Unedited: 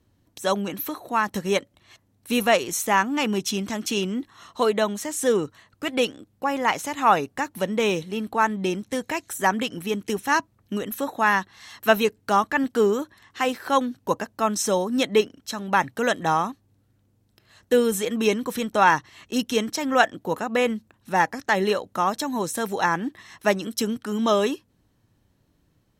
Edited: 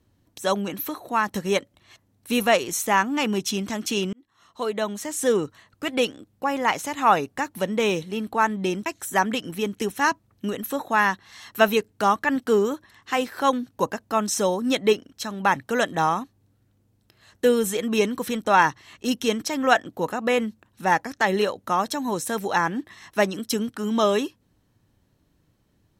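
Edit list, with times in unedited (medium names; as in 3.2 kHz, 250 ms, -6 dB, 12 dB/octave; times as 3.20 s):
4.13–5.19 s: fade in
8.86–9.14 s: delete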